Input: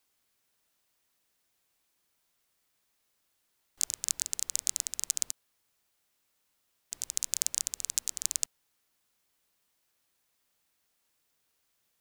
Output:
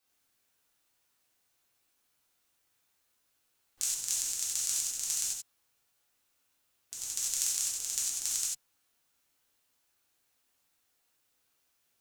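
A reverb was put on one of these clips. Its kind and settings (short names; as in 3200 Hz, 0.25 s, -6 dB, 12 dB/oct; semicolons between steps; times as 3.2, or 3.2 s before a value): non-linear reverb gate 0.12 s flat, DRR -6.5 dB; gain -6.5 dB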